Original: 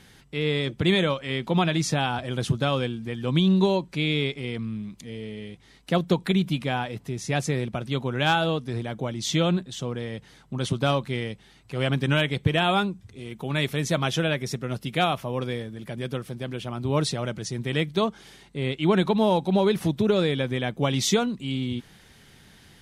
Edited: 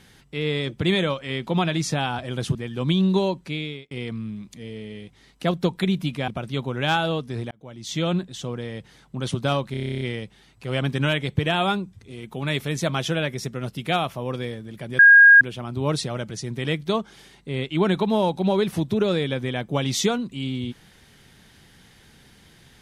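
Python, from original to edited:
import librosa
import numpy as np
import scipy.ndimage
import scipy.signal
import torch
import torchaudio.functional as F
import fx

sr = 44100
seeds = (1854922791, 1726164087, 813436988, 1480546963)

y = fx.edit(x, sr, fx.cut(start_s=2.55, length_s=0.47),
    fx.fade_out_span(start_s=3.84, length_s=0.54),
    fx.cut(start_s=6.75, length_s=0.91),
    fx.fade_in_span(start_s=8.89, length_s=0.64),
    fx.stutter(start_s=11.09, slice_s=0.03, count=11),
    fx.bleep(start_s=16.07, length_s=0.42, hz=1630.0, db=-7.0), tone=tone)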